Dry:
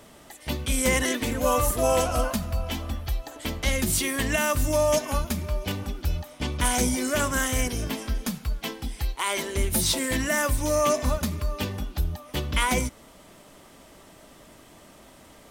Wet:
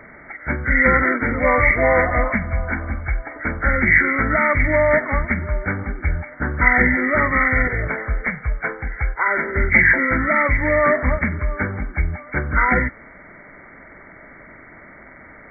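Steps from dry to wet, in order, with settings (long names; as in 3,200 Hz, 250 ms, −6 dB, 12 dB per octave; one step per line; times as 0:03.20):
hearing-aid frequency compression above 1,200 Hz 4 to 1
0:07.67–0:09.28: graphic EQ with 10 bands 125 Hz +4 dB, 250 Hz −11 dB, 500 Hz +6 dB
level +5.5 dB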